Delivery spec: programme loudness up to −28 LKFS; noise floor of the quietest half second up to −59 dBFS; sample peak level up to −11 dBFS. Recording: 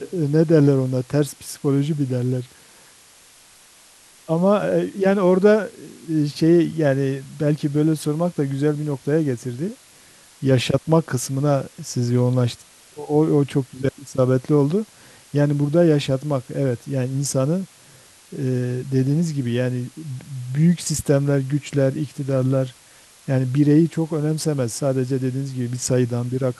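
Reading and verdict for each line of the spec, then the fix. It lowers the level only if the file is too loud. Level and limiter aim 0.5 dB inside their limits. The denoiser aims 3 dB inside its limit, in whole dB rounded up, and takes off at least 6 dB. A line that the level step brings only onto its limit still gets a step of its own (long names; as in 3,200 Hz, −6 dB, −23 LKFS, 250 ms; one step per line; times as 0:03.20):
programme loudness −21.0 LKFS: out of spec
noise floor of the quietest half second −50 dBFS: out of spec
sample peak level −3.5 dBFS: out of spec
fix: broadband denoise 6 dB, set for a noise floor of −50 dBFS
level −7.5 dB
brickwall limiter −11.5 dBFS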